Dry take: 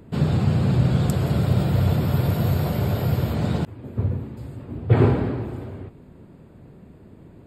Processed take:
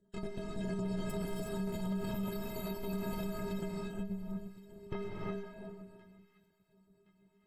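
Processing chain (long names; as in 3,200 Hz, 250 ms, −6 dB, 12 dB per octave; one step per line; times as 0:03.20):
time-frequency cells dropped at random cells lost 37%
parametric band 7,800 Hz +6 dB 0.5 octaves
harmonic generator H 3 −16 dB, 7 −27 dB, 8 −18 dB, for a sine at −4.5 dBFS
stiff-string resonator 190 Hz, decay 0.38 s, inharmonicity 0.03
on a send: delay with a high-pass on its return 1,069 ms, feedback 41%, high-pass 1,900 Hz, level −20.5 dB
on the sum: reverb whose tail is shaped and stops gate 390 ms rising, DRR 0 dB
brickwall limiter −33 dBFS, peak gain reduction 9 dB
level +4 dB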